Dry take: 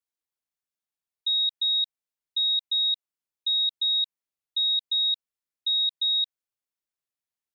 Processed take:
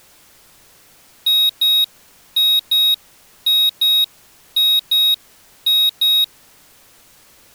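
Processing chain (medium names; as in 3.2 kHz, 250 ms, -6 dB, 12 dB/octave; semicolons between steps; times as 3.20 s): overdrive pedal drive 26 dB, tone 3.5 kHz, clips at -20.5 dBFS; added noise pink -59 dBFS; tilt EQ +2 dB/octave; trim +8 dB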